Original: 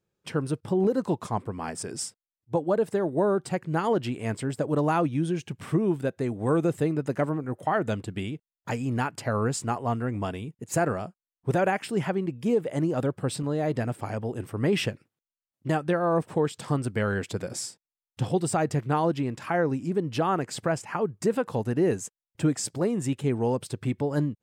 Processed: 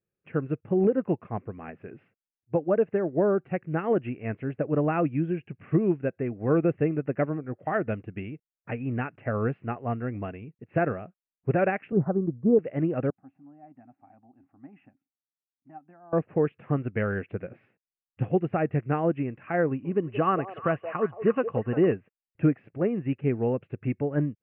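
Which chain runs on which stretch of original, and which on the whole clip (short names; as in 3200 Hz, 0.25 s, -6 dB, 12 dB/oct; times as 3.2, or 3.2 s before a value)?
11.92–12.59 steep low-pass 1300 Hz 48 dB/oct + low shelf 130 Hz +9.5 dB
13.1–16.13 double band-pass 460 Hz, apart 1.5 oct + bell 350 Hz -7.5 dB 2.6 oct
19.67–21.92 small resonant body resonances 1100/2900 Hz, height 12 dB, ringing for 30 ms + delay with a stepping band-pass 0.176 s, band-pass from 600 Hz, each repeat 1.4 oct, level -4.5 dB
whole clip: Chebyshev low-pass 2700 Hz, order 6; bell 940 Hz -10 dB 0.41 oct; upward expander 1.5:1, over -40 dBFS; gain +3.5 dB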